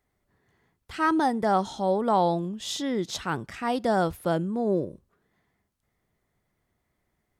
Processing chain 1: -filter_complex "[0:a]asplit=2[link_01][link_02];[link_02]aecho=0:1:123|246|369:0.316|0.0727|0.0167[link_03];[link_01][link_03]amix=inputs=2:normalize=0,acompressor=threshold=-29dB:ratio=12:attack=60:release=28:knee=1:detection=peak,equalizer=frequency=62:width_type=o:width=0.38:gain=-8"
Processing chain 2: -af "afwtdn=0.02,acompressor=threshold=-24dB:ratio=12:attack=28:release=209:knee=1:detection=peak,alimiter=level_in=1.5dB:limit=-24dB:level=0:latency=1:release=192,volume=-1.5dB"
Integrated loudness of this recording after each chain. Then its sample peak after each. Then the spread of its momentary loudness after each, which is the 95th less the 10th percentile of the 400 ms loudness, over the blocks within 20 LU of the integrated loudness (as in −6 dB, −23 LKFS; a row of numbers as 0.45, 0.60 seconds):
−27.5, −35.5 LKFS; −13.0, −25.5 dBFS; 5, 7 LU